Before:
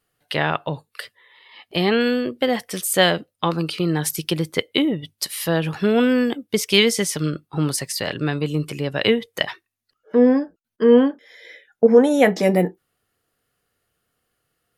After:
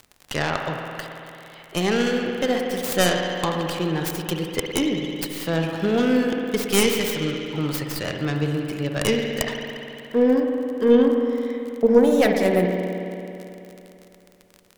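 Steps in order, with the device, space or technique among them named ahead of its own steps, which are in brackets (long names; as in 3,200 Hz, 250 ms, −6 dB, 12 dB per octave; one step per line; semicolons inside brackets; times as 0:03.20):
spring reverb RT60 3 s, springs 55 ms, chirp 75 ms, DRR 2 dB
record under a worn stylus (stylus tracing distortion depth 0.34 ms; surface crackle 43 per second −27 dBFS; pink noise bed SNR 42 dB)
level −4 dB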